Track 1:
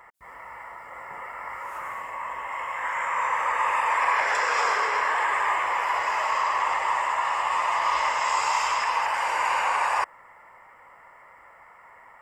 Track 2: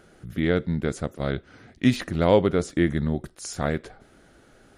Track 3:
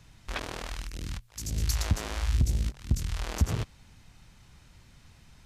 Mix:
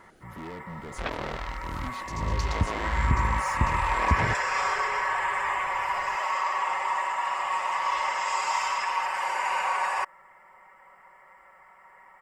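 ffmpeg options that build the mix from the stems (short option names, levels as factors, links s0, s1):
-filter_complex "[0:a]aecho=1:1:5.3:0.85,volume=0.531[s0];[1:a]acompressor=threshold=0.0708:ratio=6,asoftclip=type=tanh:threshold=0.0211,volume=0.631[s1];[2:a]lowpass=4000,equalizer=f=570:t=o:w=2.3:g=6,adelay=700,volume=1[s2];[s0][s1][s2]amix=inputs=3:normalize=0"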